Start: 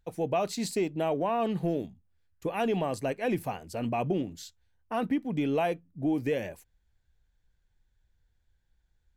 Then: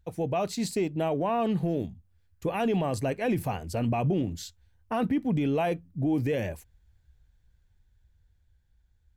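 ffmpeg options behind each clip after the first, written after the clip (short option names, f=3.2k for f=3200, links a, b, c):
-af "equalizer=f=76:w=0.7:g=10,dynaudnorm=f=540:g=7:m=4dB,alimiter=limit=-19.5dB:level=0:latency=1:release=31"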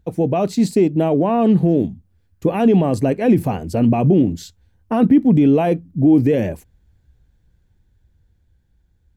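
-af "equalizer=f=260:t=o:w=2.4:g=11.5,volume=3.5dB"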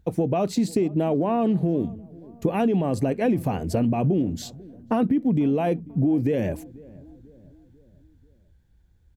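-filter_complex "[0:a]acompressor=threshold=-19dB:ratio=6,asplit=2[a][b];[b]adelay=492,lowpass=f=870:p=1,volume=-21.5dB,asplit=2[c][d];[d]adelay=492,lowpass=f=870:p=1,volume=0.54,asplit=2[e][f];[f]adelay=492,lowpass=f=870:p=1,volume=0.54,asplit=2[g][h];[h]adelay=492,lowpass=f=870:p=1,volume=0.54[i];[a][c][e][g][i]amix=inputs=5:normalize=0"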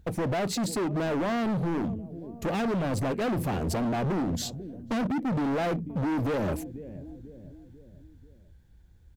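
-filter_complex "[0:a]asplit=2[a][b];[b]alimiter=limit=-18.5dB:level=0:latency=1:release=68,volume=0dB[c];[a][c]amix=inputs=2:normalize=0,asoftclip=type=hard:threshold=-23.5dB,volume=-2.5dB"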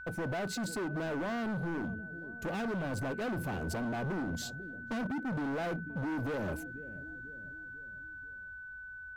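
-af "aeval=exprs='val(0)+0.0158*sin(2*PI*1500*n/s)':c=same,volume=-7.5dB"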